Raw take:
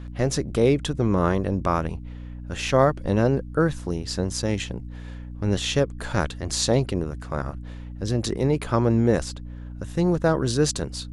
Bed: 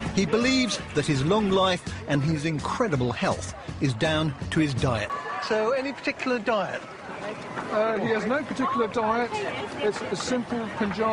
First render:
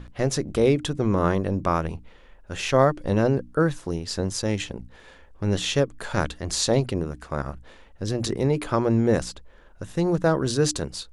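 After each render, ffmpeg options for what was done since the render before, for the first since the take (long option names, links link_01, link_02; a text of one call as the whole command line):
ffmpeg -i in.wav -af "bandreject=frequency=60:width_type=h:width=6,bandreject=frequency=120:width_type=h:width=6,bandreject=frequency=180:width_type=h:width=6,bandreject=frequency=240:width_type=h:width=6,bandreject=frequency=300:width_type=h:width=6" out.wav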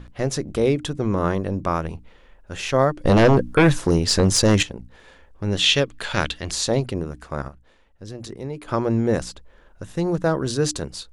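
ffmpeg -i in.wav -filter_complex "[0:a]asettb=1/sr,asplit=3[link_01][link_02][link_03];[link_01]atrim=end=3.054[link_04];[link_02]atrim=start=3.05:end=4.63,asetpts=PTS-STARTPTS,afade=type=in:duration=0.004:curve=qsin,afade=type=out:start_time=1.576:duration=0.004:curve=qsin,aeval=exprs='0.355*sin(PI/2*2.51*val(0)/0.355)':channel_layout=same[link_05];[link_03]atrim=start=4.626[link_06];[link_04][link_05]acrossfade=duration=0.004:curve1=hsin:curve2=qsin[link_07];[link_07][link_06]acrossfade=duration=0.004:curve1=qsin:curve2=hsin,asettb=1/sr,asplit=3[link_08][link_09][link_10];[link_08]atrim=end=5.594[link_11];[link_09]atrim=start=5.59:end=6.51,asetpts=PTS-STARTPTS,afade=type=in:duration=0.004:curve=qsin,afade=type=out:start_time=0.916:duration=0.004:curve=qsin,equalizer=frequency=3100:width=0.84:gain=12[link_12];[link_10]atrim=start=6.506[link_13];[link_11][link_12]acrossfade=duration=0.004:curve1=hsin:curve2=qsin[link_14];[link_14][link_13]acrossfade=duration=0.004:curve1=qsin:curve2=hsin,asplit=3[link_15][link_16][link_17];[link_15]atrim=end=7.482[link_18];[link_16]atrim=start=7.478:end=8.682,asetpts=PTS-STARTPTS,volume=-9dB[link_19];[link_17]atrim=start=8.678[link_20];[link_18][link_19]acrossfade=duration=0.004:curve1=hsin:curve2=hsin[link_21];[link_21][link_20]acrossfade=duration=0.004:curve1=hsin:curve2=hsin" out.wav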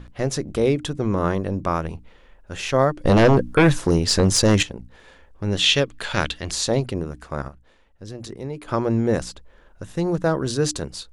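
ffmpeg -i in.wav -af anull out.wav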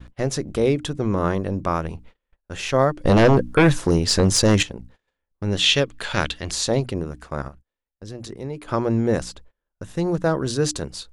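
ffmpeg -i in.wav -af "agate=range=-31dB:threshold=-43dB:ratio=16:detection=peak" out.wav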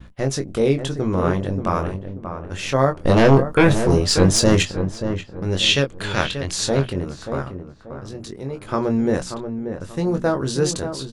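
ffmpeg -i in.wav -filter_complex "[0:a]asplit=2[link_01][link_02];[link_02]adelay=22,volume=-6.5dB[link_03];[link_01][link_03]amix=inputs=2:normalize=0,asplit=2[link_04][link_05];[link_05]adelay=584,lowpass=frequency=1400:poles=1,volume=-8dB,asplit=2[link_06][link_07];[link_07]adelay=584,lowpass=frequency=1400:poles=1,volume=0.34,asplit=2[link_08][link_09];[link_09]adelay=584,lowpass=frequency=1400:poles=1,volume=0.34,asplit=2[link_10][link_11];[link_11]adelay=584,lowpass=frequency=1400:poles=1,volume=0.34[link_12];[link_06][link_08][link_10][link_12]amix=inputs=4:normalize=0[link_13];[link_04][link_13]amix=inputs=2:normalize=0" out.wav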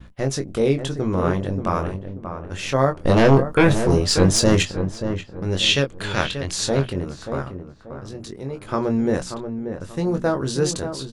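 ffmpeg -i in.wav -af "volume=-1dB" out.wav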